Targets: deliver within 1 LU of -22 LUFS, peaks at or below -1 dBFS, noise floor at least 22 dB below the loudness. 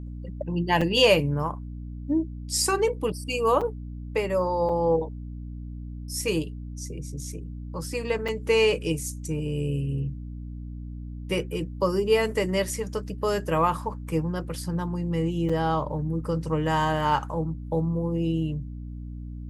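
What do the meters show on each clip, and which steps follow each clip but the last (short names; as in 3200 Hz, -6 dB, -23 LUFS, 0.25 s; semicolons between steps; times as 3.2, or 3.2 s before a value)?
dropouts 5; longest dropout 5.1 ms; hum 60 Hz; harmonics up to 300 Hz; hum level -34 dBFS; loudness -26.5 LUFS; peak -6.5 dBFS; loudness target -22.0 LUFS
-> interpolate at 0.81/3.61/4.69/8.28/15.49, 5.1 ms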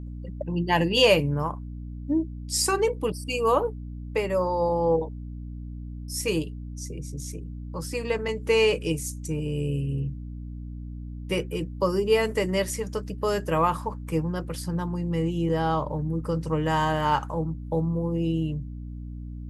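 dropouts 0; hum 60 Hz; harmonics up to 300 Hz; hum level -34 dBFS
-> notches 60/120/180/240/300 Hz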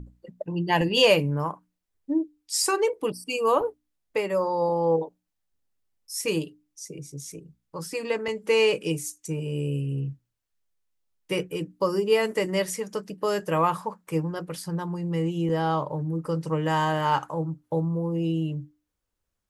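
hum none; loudness -26.5 LUFS; peak -6.5 dBFS; loudness target -22.0 LUFS
-> gain +4.5 dB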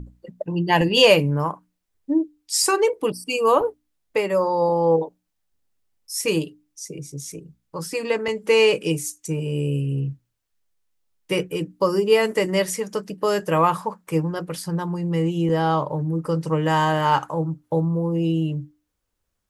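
loudness -22.0 LUFS; peak -2.0 dBFS; noise floor -76 dBFS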